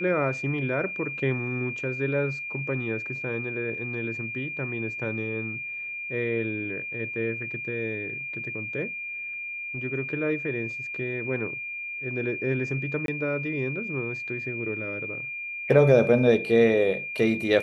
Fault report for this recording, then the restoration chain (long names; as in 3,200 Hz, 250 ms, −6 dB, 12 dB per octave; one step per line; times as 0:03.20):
whistle 2,400 Hz −32 dBFS
0:13.06–0:13.08: drop-out 22 ms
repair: notch filter 2,400 Hz, Q 30
repair the gap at 0:13.06, 22 ms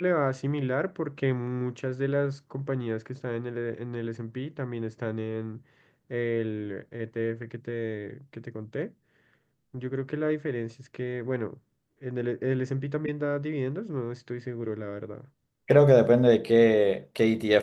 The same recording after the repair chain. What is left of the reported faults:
none of them is left